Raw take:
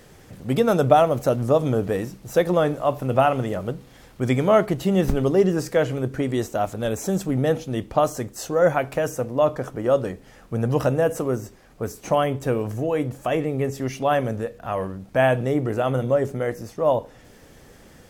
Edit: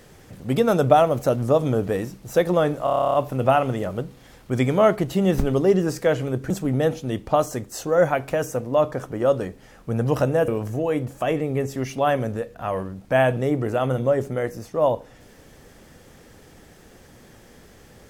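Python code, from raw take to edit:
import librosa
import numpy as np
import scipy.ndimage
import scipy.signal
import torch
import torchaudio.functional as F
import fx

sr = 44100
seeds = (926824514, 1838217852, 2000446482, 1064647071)

y = fx.edit(x, sr, fx.stutter(start_s=2.84, slice_s=0.03, count=11),
    fx.cut(start_s=6.2, length_s=0.94),
    fx.cut(start_s=11.12, length_s=1.4), tone=tone)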